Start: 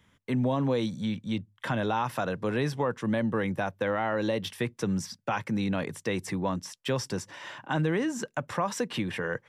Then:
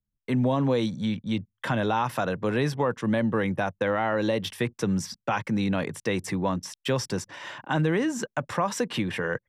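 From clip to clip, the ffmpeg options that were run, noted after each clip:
ffmpeg -i in.wav -af "dynaudnorm=framelen=120:gausssize=3:maxgain=9dB,anlmdn=0.398,volume=-6dB" out.wav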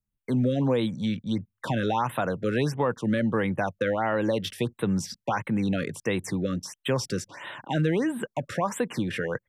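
ffmpeg -i in.wav -af "afftfilt=real='re*(1-between(b*sr/1024,810*pow(5900/810,0.5+0.5*sin(2*PI*1.5*pts/sr))/1.41,810*pow(5900/810,0.5+0.5*sin(2*PI*1.5*pts/sr))*1.41))':imag='im*(1-between(b*sr/1024,810*pow(5900/810,0.5+0.5*sin(2*PI*1.5*pts/sr))/1.41,810*pow(5900/810,0.5+0.5*sin(2*PI*1.5*pts/sr))*1.41))':win_size=1024:overlap=0.75" out.wav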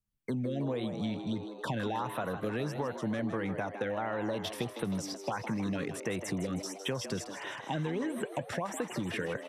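ffmpeg -i in.wav -filter_complex "[0:a]acompressor=threshold=-29dB:ratio=6,asplit=8[link_01][link_02][link_03][link_04][link_05][link_06][link_07][link_08];[link_02]adelay=158,afreqshift=100,volume=-10dB[link_09];[link_03]adelay=316,afreqshift=200,volume=-14.3dB[link_10];[link_04]adelay=474,afreqshift=300,volume=-18.6dB[link_11];[link_05]adelay=632,afreqshift=400,volume=-22.9dB[link_12];[link_06]adelay=790,afreqshift=500,volume=-27.2dB[link_13];[link_07]adelay=948,afreqshift=600,volume=-31.5dB[link_14];[link_08]adelay=1106,afreqshift=700,volume=-35.8dB[link_15];[link_01][link_09][link_10][link_11][link_12][link_13][link_14][link_15]amix=inputs=8:normalize=0,volume=-2dB" out.wav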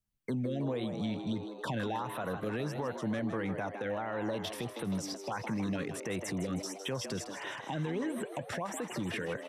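ffmpeg -i in.wav -af "alimiter=level_in=2dB:limit=-24dB:level=0:latency=1:release=43,volume=-2dB" out.wav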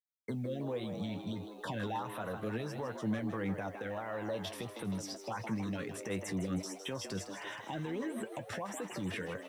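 ffmpeg -i in.wav -af "acrusher=bits=10:mix=0:aa=0.000001,flanger=delay=8.9:depth=2:regen=48:speed=0.37:shape=sinusoidal,volume=1dB" out.wav

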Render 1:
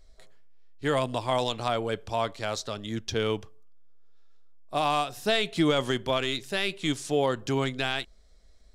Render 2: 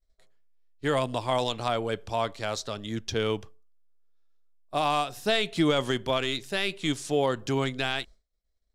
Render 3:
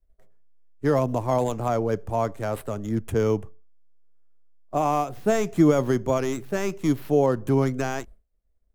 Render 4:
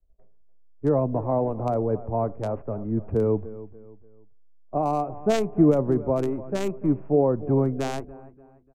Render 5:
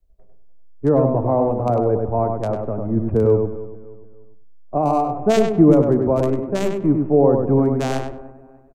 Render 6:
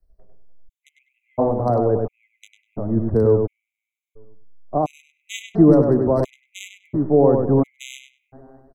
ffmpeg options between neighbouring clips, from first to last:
ffmpeg -i in.wav -af "agate=range=-33dB:threshold=-40dB:ratio=3:detection=peak" out.wav
ffmpeg -i in.wav -filter_complex "[0:a]tiltshelf=frequency=810:gain=5.5,acrossover=split=180|2400[link_01][link_02][link_03];[link_03]aeval=exprs='abs(val(0))':channel_layout=same[link_04];[link_01][link_02][link_04]amix=inputs=3:normalize=0,volume=2.5dB" out.wav
ffmpeg -i in.wav -filter_complex "[0:a]lowpass=frequency=2600:width_type=q:width=5.2,aecho=1:1:293|586|879:0.15|0.0539|0.0194,acrossover=split=330|1000[link_01][link_02][link_03];[link_03]acrusher=bits=2:mix=0:aa=0.5[link_04];[link_01][link_02][link_04]amix=inputs=3:normalize=0" out.wav
ffmpeg -i in.wav -filter_complex "[0:a]asplit=2[link_01][link_02];[link_02]adelay=99,lowpass=frequency=2400:poles=1,volume=-4dB,asplit=2[link_03][link_04];[link_04]adelay=99,lowpass=frequency=2400:poles=1,volume=0.25,asplit=2[link_05][link_06];[link_06]adelay=99,lowpass=frequency=2400:poles=1,volume=0.25[link_07];[link_01][link_03][link_05][link_07]amix=inputs=4:normalize=0,volume=5dB" out.wav
ffmpeg -i in.wav -af "afftfilt=real='re*gt(sin(2*PI*0.72*pts/sr)*(1-2*mod(floor(b*sr/1024/2000),2)),0)':imag='im*gt(sin(2*PI*0.72*pts/sr)*(1-2*mod(floor(b*sr/1024/2000),2)),0)':win_size=1024:overlap=0.75" out.wav

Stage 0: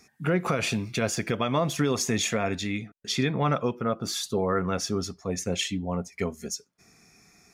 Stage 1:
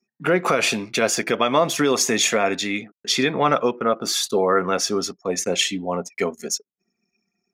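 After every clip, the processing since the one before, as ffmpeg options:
ffmpeg -i in.wav -af "anlmdn=0.0158,highpass=300,volume=8.5dB" out.wav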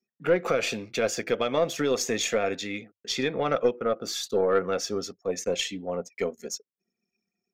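ffmpeg -i in.wav -af "equalizer=frequency=100:width_type=o:width=0.33:gain=6,equalizer=frequency=500:width_type=o:width=0.33:gain=8,equalizer=frequency=1000:width_type=o:width=0.33:gain=-8,equalizer=frequency=10000:width_type=o:width=0.33:gain=-11,aeval=exprs='0.631*(cos(1*acos(clip(val(0)/0.631,-1,1)))-cos(1*PI/2))+0.0501*(cos(3*acos(clip(val(0)/0.631,-1,1)))-cos(3*PI/2))+0.0141*(cos(4*acos(clip(val(0)/0.631,-1,1)))-cos(4*PI/2))':channel_layout=same,volume=-6.5dB" out.wav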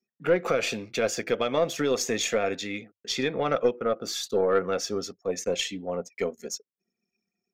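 ffmpeg -i in.wav -af anull out.wav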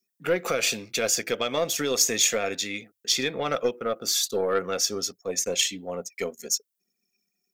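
ffmpeg -i in.wav -af "crystalizer=i=4:c=0,volume=-2.5dB" out.wav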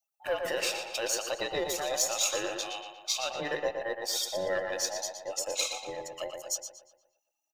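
ffmpeg -i in.wav -filter_complex "[0:a]afftfilt=real='real(if(between(b,1,1008),(2*floor((b-1)/48)+1)*48-b,b),0)':imag='imag(if(between(b,1,1008),(2*floor((b-1)/48)+1)*48-b,b),0)*if(between(b,1,1008),-1,1)':win_size=2048:overlap=0.75,asplit=2[link_01][link_02];[link_02]adelay=118,lowpass=frequency=4100:poles=1,volume=-5dB,asplit=2[link_03][link_04];[link_04]adelay=118,lowpass=frequency=4100:poles=1,volume=0.52,asplit=2[link_05][link_06];[link_06]adelay=118,lowpass=frequency=4100:poles=1,volume=0.52,asplit=2[link_07][link_08];[link_08]adelay=118,lowpass=frequency=4100:poles=1,volume=0.52,asplit=2[link_09][link_10];[link_10]adelay=118,lowpass=frequency=4100:poles=1,volume=0.52,asplit=2[link_11][link_12];[link_12]adelay=118,lowpass=frequency=4100:poles=1,volume=0.52,asplit=2[link_13][link_14];[link_14]adelay=118,lowpass=frequency=4100:poles=1,volume=0.52[link_15];[link_03][link_05][link_07][link_09][link_11][link_13][link_15]amix=inputs=7:normalize=0[link_16];[link_01][link_16]amix=inputs=2:normalize=0,volume=-7dB" out.wav

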